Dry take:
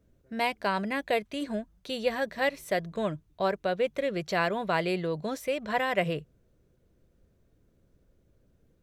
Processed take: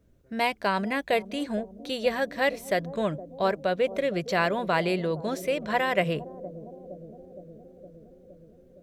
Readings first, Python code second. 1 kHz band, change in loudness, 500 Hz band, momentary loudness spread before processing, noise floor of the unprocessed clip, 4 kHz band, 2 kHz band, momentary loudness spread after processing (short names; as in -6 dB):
+2.5 dB, +2.5 dB, +3.0 dB, 6 LU, -68 dBFS, +2.5 dB, +2.5 dB, 18 LU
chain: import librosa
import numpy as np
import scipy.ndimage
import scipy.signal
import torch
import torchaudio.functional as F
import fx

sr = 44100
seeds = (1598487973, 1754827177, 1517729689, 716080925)

y = fx.echo_bbd(x, sr, ms=464, stages=2048, feedback_pct=73, wet_db=-14.5)
y = y * 10.0 ** (2.5 / 20.0)